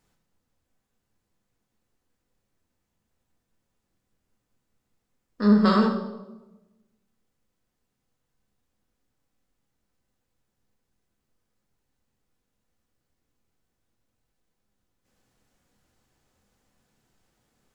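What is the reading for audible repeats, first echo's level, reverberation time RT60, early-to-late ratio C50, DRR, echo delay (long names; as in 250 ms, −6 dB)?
no echo audible, no echo audible, 1.1 s, 7.5 dB, 1.5 dB, no echo audible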